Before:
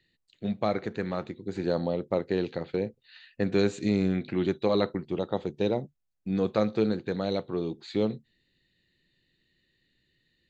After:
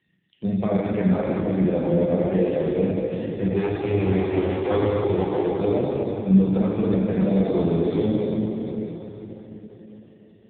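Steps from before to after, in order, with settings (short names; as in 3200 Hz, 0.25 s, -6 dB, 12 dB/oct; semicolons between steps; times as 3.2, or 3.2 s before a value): 3.46–5.59 minimum comb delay 2.4 ms; low shelf 68 Hz -5.5 dB; vocal rider within 3 dB 0.5 s; low shelf 170 Hz +8 dB; de-hum 345.2 Hz, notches 3; limiter -19.5 dBFS, peak gain reduction 8.5 dB; notch 1400 Hz, Q 7.8; flutter echo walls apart 6.3 m, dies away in 0.23 s; plate-style reverb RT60 4.5 s, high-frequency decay 0.75×, DRR -4.5 dB; gain +4.5 dB; AMR-NB 5.15 kbps 8000 Hz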